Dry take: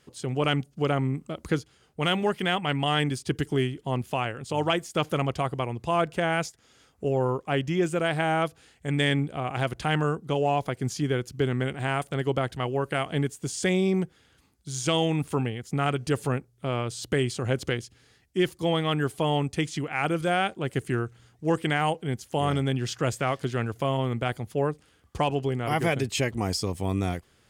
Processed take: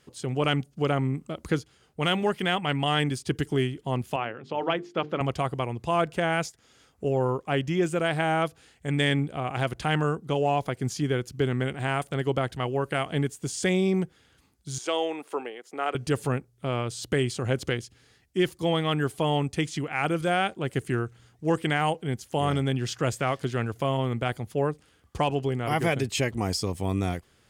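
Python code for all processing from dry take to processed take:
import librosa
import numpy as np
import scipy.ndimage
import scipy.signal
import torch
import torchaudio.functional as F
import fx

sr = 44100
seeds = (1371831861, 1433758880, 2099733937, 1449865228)

y = fx.chain(x, sr, fx.highpass(hz=190.0, slope=12),
    fx.air_absorb(metres=250.0),
    fx.hum_notches(base_hz=50, count=9), at=(4.16, 5.21))
y = fx.chain(y, sr, fx.highpass(hz=370.0, slope=24),
    fx.high_shelf(hz=2900.0, db=-9.0), at=(14.78, 15.95))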